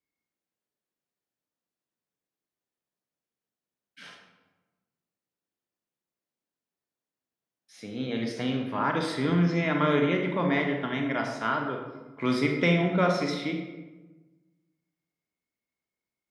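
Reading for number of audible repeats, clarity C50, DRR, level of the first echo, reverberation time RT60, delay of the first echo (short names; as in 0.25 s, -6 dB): none, 4.5 dB, 2.5 dB, none, 1.2 s, none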